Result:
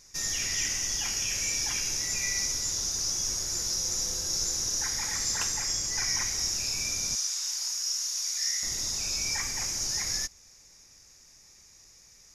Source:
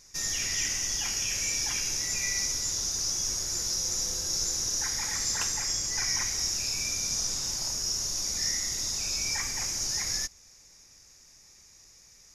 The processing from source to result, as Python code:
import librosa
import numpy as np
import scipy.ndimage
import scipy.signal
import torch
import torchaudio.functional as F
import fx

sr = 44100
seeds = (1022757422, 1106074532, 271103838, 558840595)

y = fx.highpass(x, sr, hz=1400.0, slope=12, at=(7.15, 8.63))